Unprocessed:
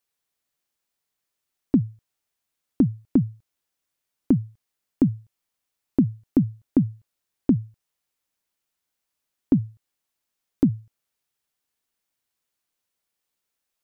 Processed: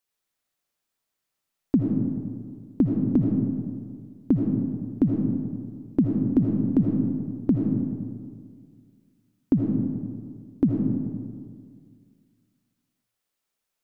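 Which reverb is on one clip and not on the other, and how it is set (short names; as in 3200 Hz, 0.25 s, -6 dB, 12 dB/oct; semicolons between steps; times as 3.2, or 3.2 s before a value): digital reverb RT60 2 s, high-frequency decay 0.4×, pre-delay 40 ms, DRR 0 dB; gain -2 dB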